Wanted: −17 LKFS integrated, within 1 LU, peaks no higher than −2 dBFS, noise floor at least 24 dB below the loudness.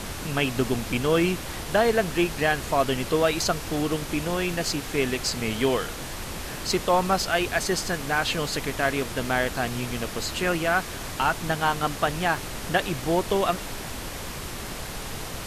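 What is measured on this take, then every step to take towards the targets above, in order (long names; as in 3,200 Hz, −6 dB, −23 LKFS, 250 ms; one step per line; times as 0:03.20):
number of dropouts 2; longest dropout 1.3 ms; background noise floor −35 dBFS; target noise floor −50 dBFS; integrated loudness −26.0 LKFS; sample peak −9.0 dBFS; target loudness −17.0 LKFS
→ repair the gap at 0:04.53/0:07.59, 1.3 ms
noise reduction from a noise print 15 dB
level +9 dB
brickwall limiter −2 dBFS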